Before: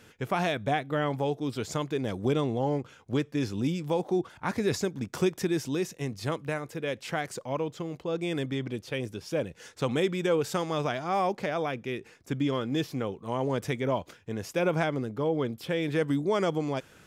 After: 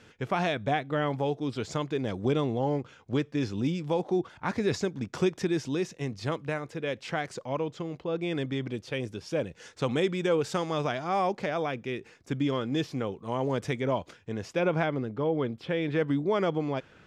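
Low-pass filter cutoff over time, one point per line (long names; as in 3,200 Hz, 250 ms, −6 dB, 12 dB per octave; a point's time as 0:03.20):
0:07.87 6,200 Hz
0:08.12 3,700 Hz
0:08.67 7,700 Hz
0:14.16 7,700 Hz
0:14.82 3,700 Hz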